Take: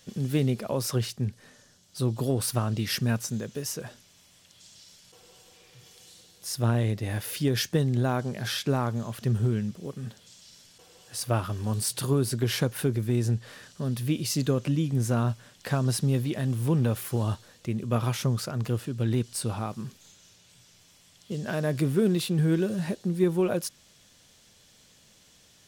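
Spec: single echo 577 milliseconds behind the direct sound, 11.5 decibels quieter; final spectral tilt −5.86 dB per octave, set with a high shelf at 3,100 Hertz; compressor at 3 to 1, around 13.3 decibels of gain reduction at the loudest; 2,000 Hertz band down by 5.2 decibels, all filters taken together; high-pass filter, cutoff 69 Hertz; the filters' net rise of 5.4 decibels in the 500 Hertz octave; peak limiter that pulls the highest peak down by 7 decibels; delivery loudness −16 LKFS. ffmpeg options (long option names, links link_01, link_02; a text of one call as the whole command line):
ffmpeg -i in.wav -af "highpass=69,equalizer=frequency=500:width_type=o:gain=7.5,equalizer=frequency=2000:width_type=o:gain=-6,highshelf=frequency=3100:gain=-5,acompressor=threshold=-34dB:ratio=3,alimiter=level_in=2dB:limit=-24dB:level=0:latency=1,volume=-2dB,aecho=1:1:577:0.266,volume=21.5dB" out.wav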